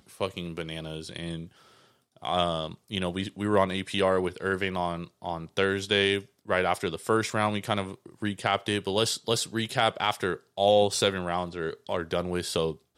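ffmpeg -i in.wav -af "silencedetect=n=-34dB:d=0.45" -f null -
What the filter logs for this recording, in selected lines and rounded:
silence_start: 1.44
silence_end: 2.22 | silence_duration: 0.78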